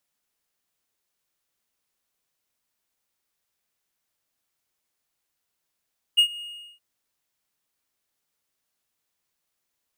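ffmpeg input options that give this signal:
-f lavfi -i "aevalsrc='0.316*(1-4*abs(mod(2860*t+0.25,1)-0.5))':d=0.621:s=44100,afade=t=in:d=0.018,afade=t=out:st=0.018:d=0.085:silence=0.0841,afade=t=out:st=0.23:d=0.391"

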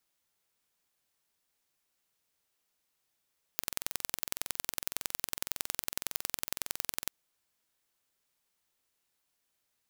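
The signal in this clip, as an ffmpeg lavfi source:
-f lavfi -i "aevalsrc='0.668*eq(mod(n,2023),0)*(0.5+0.5*eq(mod(n,4046),0))':d=3.53:s=44100"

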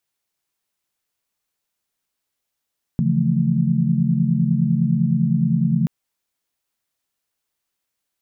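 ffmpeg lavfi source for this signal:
-f lavfi -i "aevalsrc='0.0891*(sin(2*PI*138.59*t)+sin(2*PI*164.81*t)+sin(2*PI*174.61*t)+sin(2*PI*220*t))':d=2.88:s=44100"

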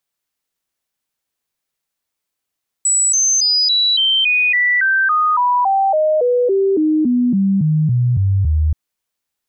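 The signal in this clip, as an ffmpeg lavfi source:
-f lavfi -i "aevalsrc='0.266*clip(min(mod(t,0.28),0.28-mod(t,0.28))/0.005,0,1)*sin(2*PI*7860*pow(2,-floor(t/0.28)/3)*mod(t,0.28))':d=5.88:s=44100"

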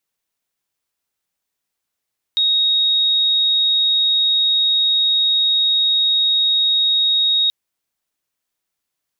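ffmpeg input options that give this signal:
-f lavfi -i "aevalsrc='0.224*sin(2*PI*3760*t)':d=5.13:s=44100"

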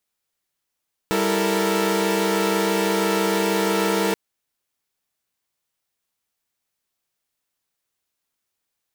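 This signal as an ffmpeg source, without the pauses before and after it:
-f lavfi -i "aevalsrc='0.0794*((2*mod(196*t,1)-1)+(2*mod(329.63*t,1)-1)+(2*mod(440*t,1)-1)+(2*mod(466.16*t,1)-1))':d=3.03:s=44100"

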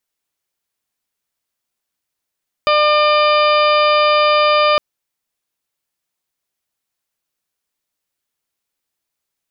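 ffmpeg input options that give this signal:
-f lavfi -i "aevalsrc='0.2*sin(2*PI*600*t)+0.211*sin(2*PI*1200*t)+0.0398*sin(2*PI*1800*t)+0.1*sin(2*PI*2400*t)+0.0668*sin(2*PI*3000*t)+0.0531*sin(2*PI*3600*t)+0.02*sin(2*PI*4200*t)+0.0562*sin(2*PI*4800*t)':d=2.11:s=44100"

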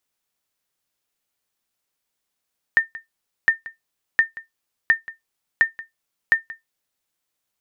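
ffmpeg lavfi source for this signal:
-f lavfi -i "aevalsrc='0.473*(sin(2*PI*1810*mod(t,0.71))*exp(-6.91*mod(t,0.71)/0.15)+0.112*sin(2*PI*1810*max(mod(t,0.71)-0.18,0))*exp(-6.91*max(mod(t,0.71)-0.18,0)/0.15))':d=4.26:s=44100"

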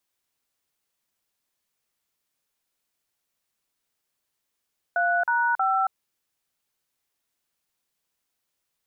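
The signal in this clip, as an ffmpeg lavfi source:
-f lavfi -i "aevalsrc='0.075*clip(min(mod(t,0.317),0.275-mod(t,0.317))/0.002,0,1)*(eq(floor(t/0.317),0)*(sin(2*PI*697*mod(t,0.317))+sin(2*PI*1477*mod(t,0.317)))+eq(floor(t/0.317),1)*(sin(2*PI*941*mod(t,0.317))+sin(2*PI*1477*mod(t,0.317)))+eq(floor(t/0.317),2)*(sin(2*PI*770*mod(t,0.317))+sin(2*PI*1336*mod(t,0.317))))':d=0.951:s=44100"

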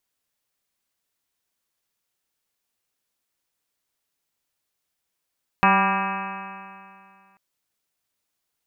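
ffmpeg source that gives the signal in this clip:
-f lavfi -i "aevalsrc='0.0891*pow(10,-3*t/2.34)*sin(2*PI*191.17*t)+0.0282*pow(10,-3*t/2.34)*sin(2*PI*383.37*t)+0.0282*pow(10,-3*t/2.34)*sin(2*PI*577.62*t)+0.106*pow(10,-3*t/2.34)*sin(2*PI*774.92*t)+0.119*pow(10,-3*t/2.34)*sin(2*PI*976.25*t)+0.119*pow(10,-3*t/2.34)*sin(2*PI*1182.55*t)+0.0447*pow(10,-3*t/2.34)*sin(2*PI*1394.72*t)+0.0668*pow(10,-3*t/2.34)*sin(2*PI*1613.61*t)+0.0398*pow(10,-3*t/2.34)*sin(2*PI*1840.05*t)+0.0178*pow(10,-3*t/2.34)*sin(2*PI*2074.79*t)+0.0376*pow(10,-3*t/2.34)*sin(2*PI*2318.54*t)+0.0708*pow(10,-3*t/2.34)*sin(2*PI*2571.95*t)+0.0112*pow(10,-3*t/2.34)*sin(2*PI*2835.63*t)':d=1.74:s=44100"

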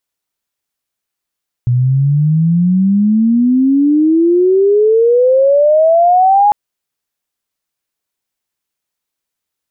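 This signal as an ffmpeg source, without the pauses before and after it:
-f lavfi -i "aevalsrc='pow(10,(-8.5+3*t/4.85)/20)*sin(2*PI*120*4.85/log(840/120)*(exp(log(840/120)*t/4.85)-1))':d=4.85:s=44100"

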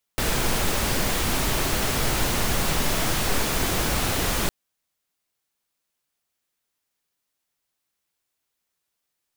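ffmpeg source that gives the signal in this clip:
-f lavfi -i "anoisesrc=c=pink:a=0.363:d=4.31:r=44100:seed=1"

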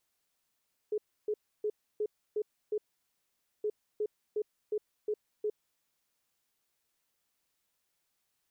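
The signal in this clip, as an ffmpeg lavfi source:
-f lavfi -i "aevalsrc='0.0376*sin(2*PI*423*t)*clip(min(mod(mod(t,2.72),0.36),0.06-mod(mod(t,2.72),0.36))/0.005,0,1)*lt(mod(t,2.72),2.16)':d=5.44:s=44100"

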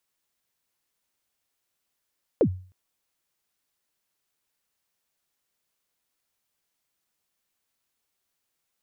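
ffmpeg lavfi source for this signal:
-f lavfi -i "aevalsrc='0.224*pow(10,-3*t/0.42)*sin(2*PI*(560*0.076/log(92/560)*(exp(log(92/560)*min(t,0.076)/0.076)-1)+92*max(t-0.076,0)))':d=0.31:s=44100"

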